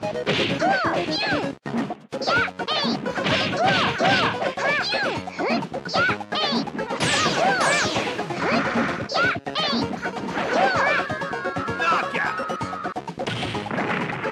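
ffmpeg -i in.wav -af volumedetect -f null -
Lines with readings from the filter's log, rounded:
mean_volume: -23.5 dB
max_volume: -7.4 dB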